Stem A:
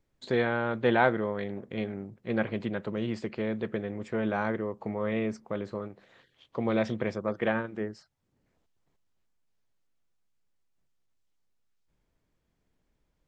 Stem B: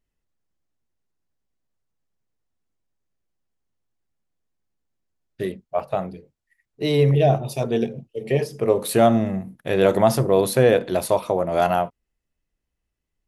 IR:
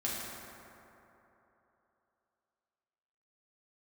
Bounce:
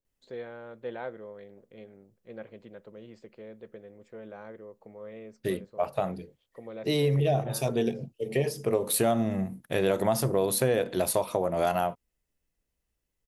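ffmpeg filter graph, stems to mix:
-filter_complex "[0:a]equalizer=frequency=510:width=2.1:gain=9,volume=-18.5dB[link_01];[1:a]adelay=50,volume=-2.5dB[link_02];[link_01][link_02]amix=inputs=2:normalize=0,highshelf=frequency=6300:gain=8.5,acompressor=threshold=-23dB:ratio=3"

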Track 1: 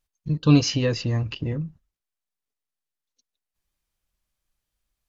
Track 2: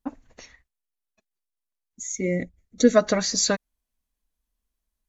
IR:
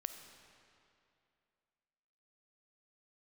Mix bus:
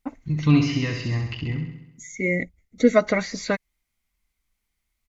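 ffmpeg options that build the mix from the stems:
-filter_complex "[0:a]equalizer=frequency=520:width=3.5:gain=-13.5,volume=-1dB,asplit=2[link_01][link_02];[link_02]volume=-6.5dB[link_03];[1:a]volume=0dB[link_04];[link_03]aecho=0:1:66|132|198|264|330|396|462|528|594:1|0.57|0.325|0.185|0.106|0.0602|0.0343|0.0195|0.0111[link_05];[link_01][link_04][link_05]amix=inputs=3:normalize=0,acrossover=split=3100[link_06][link_07];[link_07]acompressor=threshold=-40dB:ratio=4:attack=1:release=60[link_08];[link_06][link_08]amix=inputs=2:normalize=0,equalizer=frequency=2100:width_type=o:width=0.27:gain=12.5,bandreject=frequency=1700:width=14"

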